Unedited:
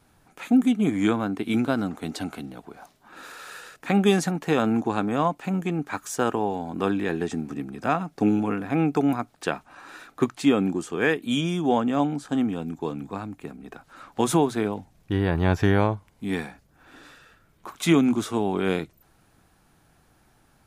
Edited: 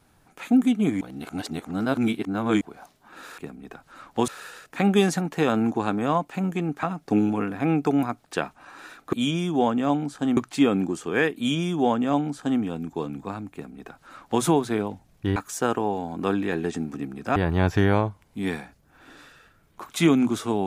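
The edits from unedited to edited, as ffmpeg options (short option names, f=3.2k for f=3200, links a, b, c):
-filter_complex "[0:a]asplit=10[a][b][c][d][e][f][g][h][i][j];[a]atrim=end=1.012[k];[b]atrim=start=1.008:end=2.612,asetpts=PTS-STARTPTS,areverse[l];[c]atrim=start=2.608:end=3.382[m];[d]atrim=start=13.388:end=14.292[n];[e]atrim=start=3.378:end=5.932[o];[f]atrim=start=7.928:end=10.232[p];[g]atrim=start=11.228:end=12.472[q];[h]atrim=start=10.228:end=15.222[r];[i]atrim=start=5.928:end=7.932[s];[j]atrim=start=15.218[t];[k][l]acrossfade=d=0.004:c1=hsin:c2=hsin[u];[u][m]acrossfade=d=0.004:c1=hsin:c2=hsin[v];[v][n]acrossfade=d=0.004:c1=hsin:c2=hsin[w];[w][o]acrossfade=d=0.004:c1=hsin:c2=hsin[x];[x][p]acrossfade=d=0.004:c1=hsin:c2=hsin[y];[y][q]acrossfade=d=0.004:c1=hsin:c2=hsin[z];[z][r]acrossfade=d=0.004:c1=hsin:c2=hsin[aa];[aa][s]acrossfade=d=0.004:c1=hsin:c2=hsin[ab];[ab][t]acrossfade=d=0.004:c1=hsin:c2=hsin"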